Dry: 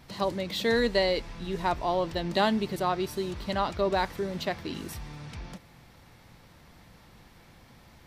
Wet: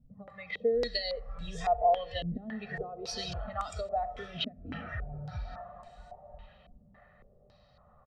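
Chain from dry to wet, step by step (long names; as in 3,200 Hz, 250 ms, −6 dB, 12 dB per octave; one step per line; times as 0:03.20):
low-pass that shuts in the quiet parts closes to 750 Hz, open at −26.5 dBFS
parametric band 380 Hz −13.5 dB 0.24 octaves
comb filter 1.6 ms, depth 96%
feedback delay with all-pass diffusion 1,165 ms, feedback 51%, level −14 dB
dynamic equaliser 980 Hz, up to −4 dB, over −44 dBFS, Q 2.4
downward compressor 16 to 1, threshold −31 dBFS, peak gain reduction 15.5 dB
noise reduction from a noise print of the clip's start 15 dB
convolution reverb RT60 1.5 s, pre-delay 58 ms, DRR 18 dB
low-pass on a step sequencer 3.6 Hz 270–7,800 Hz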